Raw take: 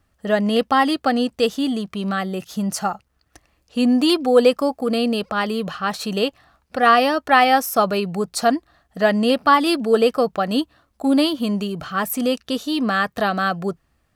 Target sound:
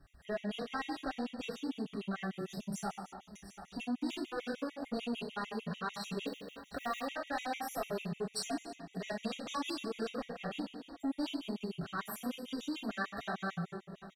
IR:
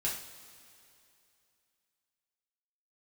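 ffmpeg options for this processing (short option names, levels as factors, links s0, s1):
-filter_complex "[0:a]asoftclip=type=tanh:threshold=0.112,aecho=1:1:716|1432:0.0631|0.0208[s0];[1:a]atrim=start_sample=2205,afade=t=out:st=0.41:d=0.01,atrim=end_sample=18522[s1];[s0][s1]afir=irnorm=-1:irlink=0,acompressor=threshold=0.00501:ratio=2,highshelf=f=8600:g=-8,asettb=1/sr,asplit=3[s2][s3][s4];[s2]atrim=end=6.274[s5];[s3]atrim=start=6.27:end=7.06,asetpts=PTS-STARTPTS,afade=t=in:d=0.004:c=qsin,afade=t=out:st=0.786:d=0.004:c=qsin,acrusher=bits=5:mode=log:mix=0:aa=0.000001[s6];[s4]atrim=start=7.056[s7];[s5][s6]acrossfade=d=0.004:c1=hsin:c2=qsin[s8];[s8][s7]acrossfade=d=0.004:c1=qsin:c2=hsin,asettb=1/sr,asplit=3[s9][s10][s11];[s9]atrim=end=8.364[s12];[s10]atrim=start=8.36:end=10.09,asetpts=PTS-STARTPTS,afade=t=in:d=0.004:c=qsin,afade=t=out:st=1.726:d=0.004:c=qsin,equalizer=f=6800:t=o:w=1.2:g=7.5[s13];[s11]atrim=start=10.086[s14];[s12][s13]acrossfade=d=0.004:c1=hsin:c2=qsin[s15];[s15][s14]acrossfade=d=0.004:c1=qsin:c2=hsin,afftfilt=real='re*gt(sin(2*PI*6.7*pts/sr)*(1-2*mod(floor(b*sr/1024/1900),2)),0)':imag='im*gt(sin(2*PI*6.7*pts/sr)*(1-2*mod(floor(b*sr/1024/1900),2)),0)':win_size=1024:overlap=0.75"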